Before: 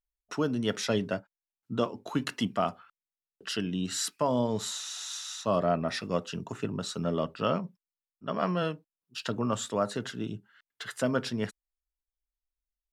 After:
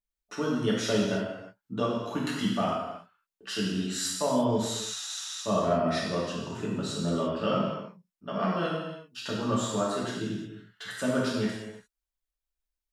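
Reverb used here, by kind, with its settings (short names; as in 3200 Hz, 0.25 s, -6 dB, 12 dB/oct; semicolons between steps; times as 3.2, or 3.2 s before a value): non-linear reverb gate 0.38 s falling, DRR -5.5 dB; gain -5 dB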